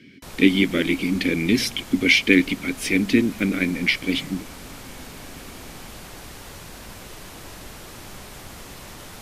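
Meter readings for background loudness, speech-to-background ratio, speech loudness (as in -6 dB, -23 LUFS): -39.5 LUFS, 19.0 dB, -20.5 LUFS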